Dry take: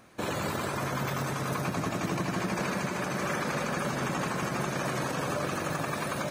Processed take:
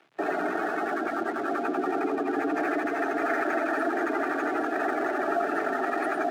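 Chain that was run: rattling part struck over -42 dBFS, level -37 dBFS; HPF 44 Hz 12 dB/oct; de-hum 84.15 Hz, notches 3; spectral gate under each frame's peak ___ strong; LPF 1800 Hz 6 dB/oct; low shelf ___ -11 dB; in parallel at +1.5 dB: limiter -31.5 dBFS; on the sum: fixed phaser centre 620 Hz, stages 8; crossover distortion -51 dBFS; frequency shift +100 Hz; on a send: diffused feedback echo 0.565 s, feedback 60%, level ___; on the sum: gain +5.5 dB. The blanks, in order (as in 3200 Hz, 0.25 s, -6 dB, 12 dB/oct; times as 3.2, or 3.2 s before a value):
-15 dB, 85 Hz, -15 dB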